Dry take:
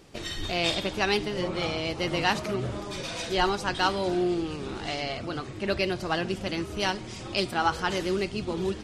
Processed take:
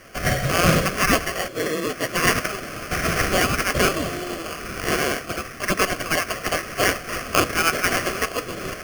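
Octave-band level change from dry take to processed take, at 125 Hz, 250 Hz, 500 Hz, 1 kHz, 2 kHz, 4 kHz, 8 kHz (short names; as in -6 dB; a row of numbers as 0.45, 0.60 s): +7.0, +3.5, +4.0, +5.0, +9.0, +3.5, +15.0 dB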